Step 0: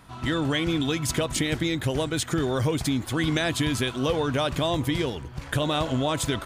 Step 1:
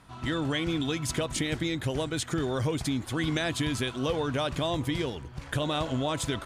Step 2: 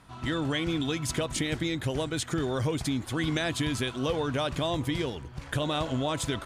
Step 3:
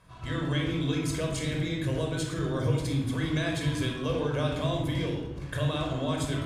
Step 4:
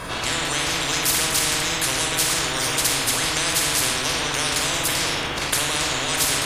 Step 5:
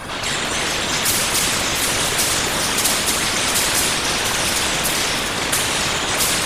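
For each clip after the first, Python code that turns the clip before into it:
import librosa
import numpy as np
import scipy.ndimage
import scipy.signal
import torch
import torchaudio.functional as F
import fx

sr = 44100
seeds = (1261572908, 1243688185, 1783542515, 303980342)

y1 = scipy.signal.sosfilt(scipy.signal.butter(2, 12000.0, 'lowpass', fs=sr, output='sos'), x)
y1 = F.gain(torch.from_numpy(y1), -4.0).numpy()
y2 = y1
y3 = fx.room_shoebox(y2, sr, seeds[0], volume_m3=3100.0, walls='furnished', distance_m=5.4)
y3 = F.gain(torch.from_numpy(y3), -7.0).numpy()
y4 = fx.spectral_comp(y3, sr, ratio=10.0)
y4 = F.gain(torch.from_numpy(y4), 8.5).numpy()
y5 = fx.whisperise(y4, sr, seeds[1])
y5 = fx.echo_alternate(y5, sr, ms=350, hz=2100.0, feedback_pct=72, wet_db=-4.5)
y5 = F.gain(torch.from_numpy(y5), 2.0).numpy()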